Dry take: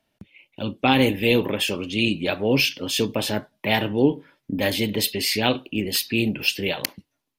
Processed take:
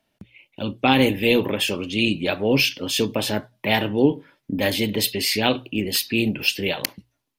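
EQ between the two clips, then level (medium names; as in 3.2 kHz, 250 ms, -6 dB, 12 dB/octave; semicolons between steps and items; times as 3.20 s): hum notches 60/120 Hz; +1.0 dB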